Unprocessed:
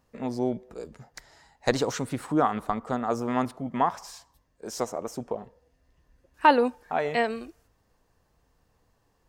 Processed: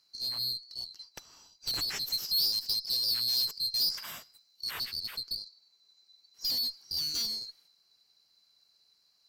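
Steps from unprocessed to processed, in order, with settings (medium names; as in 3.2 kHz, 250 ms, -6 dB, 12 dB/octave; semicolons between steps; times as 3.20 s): split-band scrambler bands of 4 kHz; valve stage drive 29 dB, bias 0.25; 2.07–4.71 s: treble shelf 4.6 kHz +7.5 dB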